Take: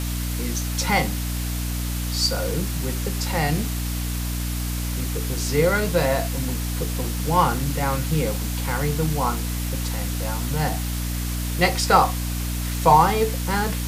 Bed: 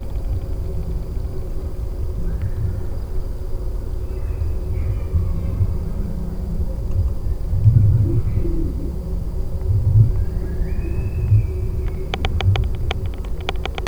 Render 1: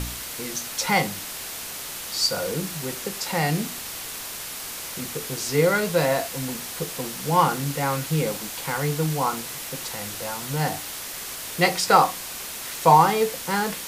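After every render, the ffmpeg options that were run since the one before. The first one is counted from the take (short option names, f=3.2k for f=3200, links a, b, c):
-af "bandreject=f=60:t=h:w=4,bandreject=f=120:t=h:w=4,bandreject=f=180:t=h:w=4,bandreject=f=240:t=h:w=4,bandreject=f=300:t=h:w=4"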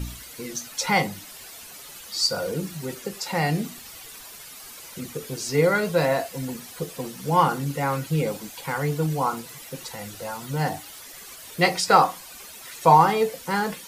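-af "afftdn=nr=12:nf=-35"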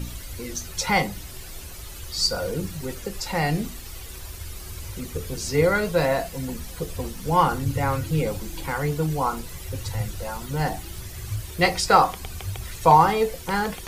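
-filter_complex "[1:a]volume=-15.5dB[a];[0:a][a]amix=inputs=2:normalize=0"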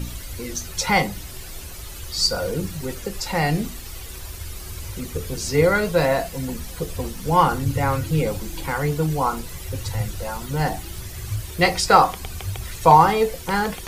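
-af "volume=2.5dB,alimiter=limit=-1dB:level=0:latency=1"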